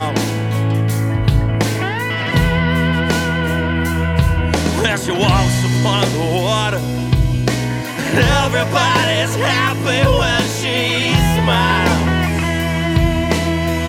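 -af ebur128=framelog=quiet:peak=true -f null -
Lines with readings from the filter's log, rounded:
Integrated loudness:
  I:         -15.9 LUFS
  Threshold: -25.9 LUFS
Loudness range:
  LRA:         1.9 LU
  Threshold: -35.7 LUFS
  LRA low:   -16.6 LUFS
  LRA high:  -14.7 LUFS
True peak:
  Peak:       -1.9 dBFS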